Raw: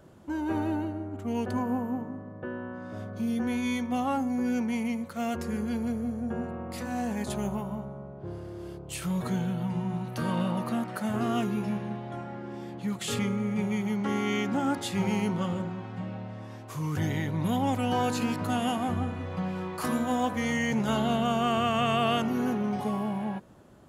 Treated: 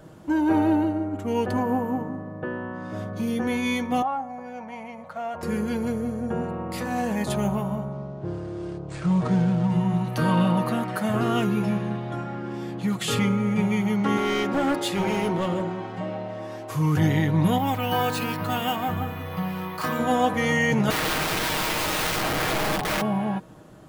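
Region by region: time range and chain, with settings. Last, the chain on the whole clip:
0:04.02–0:05.43: low-pass filter 1,000 Hz 6 dB per octave + downward compressor 4 to 1, threshold −31 dBFS + low shelf with overshoot 500 Hz −9 dB, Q 3
0:07.92–0:09.72: running median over 15 samples + linear-phase brick-wall low-pass 9,700 Hz
0:14.17–0:16.71: low-shelf EQ 400 Hz −8 dB + hollow resonant body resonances 370/580 Hz, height 10 dB, ringing for 30 ms + hard clipping −25.5 dBFS
0:17.58–0:19.99: parametric band 310 Hz −6.5 dB 2.7 octaves + bad sample-rate conversion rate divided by 3×, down filtered, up hold
0:20.90–0:23.02: low-pass filter 1,400 Hz 6 dB per octave + wrap-around overflow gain 27.5 dB
whole clip: comb filter 6.4 ms, depth 42%; dynamic equaliser 7,200 Hz, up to −4 dB, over −53 dBFS, Q 0.97; level +6.5 dB

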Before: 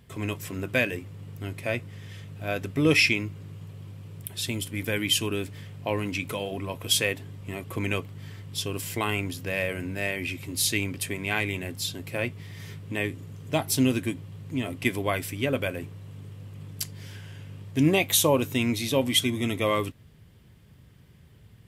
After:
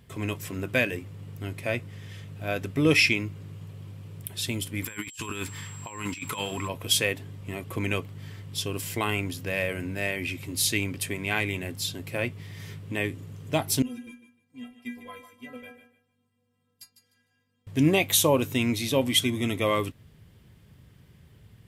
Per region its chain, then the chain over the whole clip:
0:04.82–0:06.67: low shelf with overshoot 800 Hz −6 dB, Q 3 + compressor whose output falls as the input rises −36 dBFS, ratio −0.5 + steady tone 7,600 Hz −45 dBFS
0:13.82–0:17.67: noise gate −33 dBFS, range −10 dB + stiff-string resonator 240 Hz, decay 0.37 s, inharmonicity 0.008 + feedback echo with a high-pass in the loop 151 ms, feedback 23%, high-pass 190 Hz, level −11 dB
whole clip: no processing

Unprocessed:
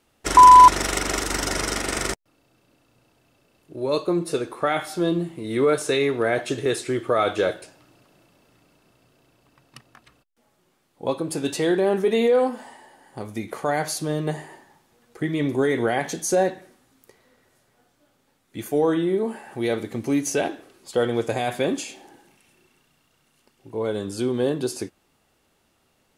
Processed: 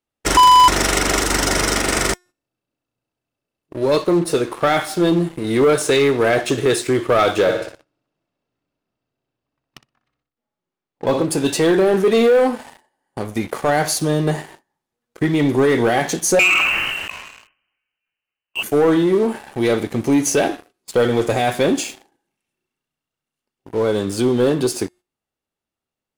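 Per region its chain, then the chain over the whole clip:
0:07.42–0:11.25: low-pass filter 7,200 Hz + high-shelf EQ 4,100 Hz −4 dB + flutter between parallel walls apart 10.5 metres, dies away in 0.59 s
0:16.39–0:18.63: voice inversion scrambler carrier 3,000 Hz + level that may fall only so fast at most 29 dB per second
whole clip: hum removal 358.8 Hz, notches 36; noise gate −47 dBFS, range −12 dB; leveller curve on the samples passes 3; level −3 dB

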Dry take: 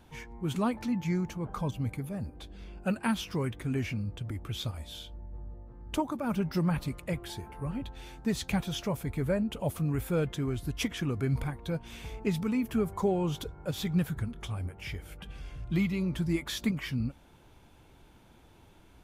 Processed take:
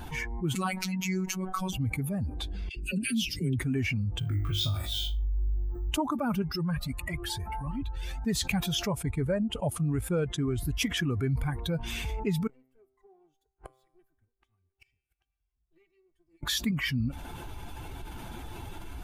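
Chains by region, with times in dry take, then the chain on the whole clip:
0:00.55–0:01.73: tilt shelving filter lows −5 dB, about 1,300 Hz + mains-hum notches 50/100/150/200/250/300/350/400 Hz + phases set to zero 187 Hz
0:02.69–0:03.59: Chebyshev band-stop filter 310–2,900 Hz + comb filter 7.5 ms, depth 45% + all-pass dispersion lows, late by 76 ms, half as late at 660 Hz
0:04.19–0:05.91: flutter between parallel walls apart 3.4 metres, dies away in 0.42 s + bad sample-rate conversion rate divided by 2×, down filtered, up hold
0:06.42–0:08.26: upward compression, threshold −36 dBFS + transient designer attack −10 dB, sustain −5 dB + flanger whose copies keep moving one way rising 1.5 Hz
0:08.87–0:10.58: low-pass filter 11,000 Hz 24 dB per octave + transient designer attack +2 dB, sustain −9 dB
0:12.47–0:16.43: lower of the sound and its delayed copy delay 2.6 ms + gate with flip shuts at −38 dBFS, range −39 dB + tuned comb filter 130 Hz, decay 1.4 s, mix 70%
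whole clip: spectral dynamics exaggerated over time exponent 1.5; envelope flattener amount 70%

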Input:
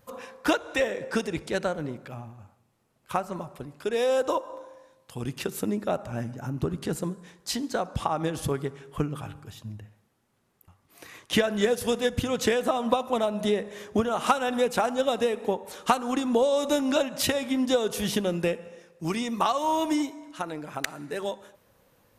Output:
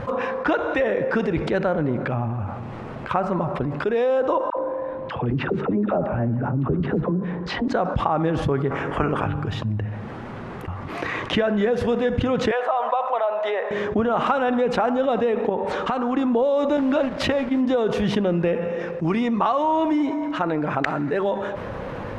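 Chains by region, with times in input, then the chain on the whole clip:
0:04.50–0:07.68: head-to-tape spacing loss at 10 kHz 31 dB + all-pass dispersion lows, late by 71 ms, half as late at 740 Hz
0:08.70–0:09.24: ceiling on every frequency bin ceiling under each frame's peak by 19 dB + Butterworth low-pass 11,000 Hz 48 dB per octave + parametric band 3,900 Hz −9 dB 0.63 octaves
0:12.51–0:13.71: high-pass filter 630 Hz 24 dB per octave + high-shelf EQ 3,200 Hz −11.5 dB
0:15.49–0:16.16: low-pass filter 11,000 Hz + downward compressor 3 to 1, threshold −33 dBFS
0:16.77–0:17.61: hold until the input has moved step −35.5 dBFS + downward expander −27 dBFS
whole clip: low-pass filter 1,900 Hz 12 dB per octave; envelope flattener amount 70%

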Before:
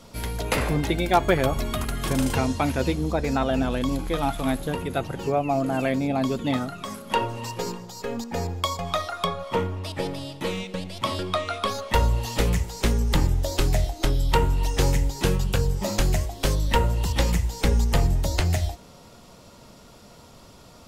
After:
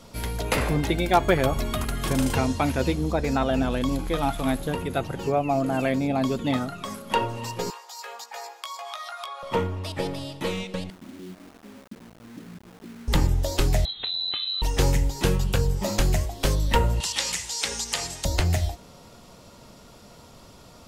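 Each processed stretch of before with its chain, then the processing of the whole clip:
0:07.70–0:09.43: inverse Chebyshev high-pass filter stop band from 160 Hz, stop band 70 dB + downward compressor 4 to 1, threshold −34 dBFS + double-tracking delay 17 ms −6 dB
0:10.90–0:13.08: downward compressor 12 to 1, threshold −28 dBFS + flat-topped band-pass 240 Hz, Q 1.6 + bit-depth reduction 8 bits, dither none
0:13.85–0:14.62: downward compressor 2.5 to 1, threshold −33 dBFS + voice inversion scrambler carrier 4,000 Hz
0:17.00–0:18.25: meter weighting curve ITU-R 468 + downward compressor 2 to 1, threshold −25 dBFS
whole clip: no processing

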